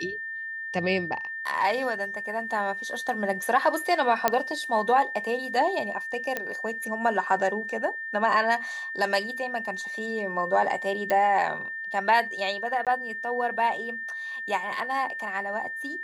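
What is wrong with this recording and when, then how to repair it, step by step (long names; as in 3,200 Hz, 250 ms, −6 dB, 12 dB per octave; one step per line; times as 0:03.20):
whistle 1,800 Hz −32 dBFS
0:04.28: click −6 dBFS
0:06.37: click −13 dBFS
0:11.10: click −13 dBFS
0:12.85–0:12.87: drop-out 17 ms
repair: click removal
notch filter 1,800 Hz, Q 30
repair the gap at 0:12.85, 17 ms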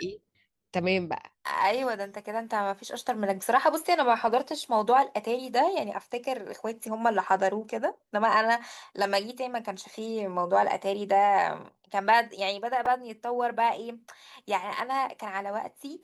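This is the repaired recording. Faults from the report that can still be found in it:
none of them is left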